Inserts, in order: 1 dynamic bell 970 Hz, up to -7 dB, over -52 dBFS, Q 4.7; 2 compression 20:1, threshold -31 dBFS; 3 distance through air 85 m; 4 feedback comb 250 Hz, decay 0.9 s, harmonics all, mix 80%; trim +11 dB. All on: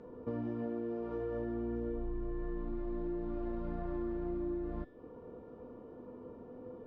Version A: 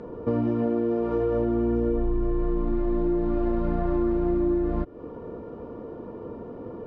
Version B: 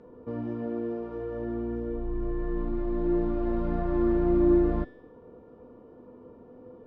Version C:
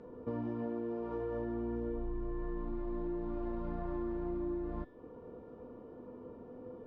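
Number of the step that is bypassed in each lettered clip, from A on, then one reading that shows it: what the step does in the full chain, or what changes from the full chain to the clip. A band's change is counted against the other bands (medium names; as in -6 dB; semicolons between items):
4, loudness change +13.5 LU; 2, mean gain reduction 6.0 dB; 1, 1 kHz band +2.5 dB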